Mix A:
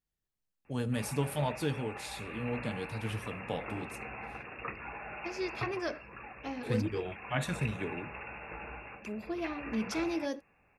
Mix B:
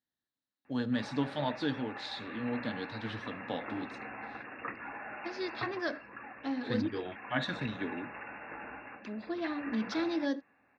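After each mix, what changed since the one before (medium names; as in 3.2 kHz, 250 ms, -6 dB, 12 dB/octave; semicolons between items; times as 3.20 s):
master: add cabinet simulation 150–4900 Hz, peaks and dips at 160 Hz -7 dB, 270 Hz +8 dB, 420 Hz -5 dB, 1.7 kHz +6 dB, 2.5 kHz -9 dB, 3.9 kHz +9 dB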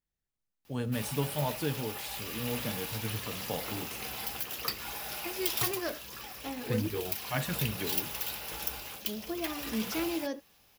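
background: remove brick-wall FIR low-pass 2.8 kHz; master: remove cabinet simulation 150–4900 Hz, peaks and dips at 160 Hz -7 dB, 270 Hz +8 dB, 420 Hz -5 dB, 1.7 kHz +6 dB, 2.5 kHz -9 dB, 3.9 kHz +9 dB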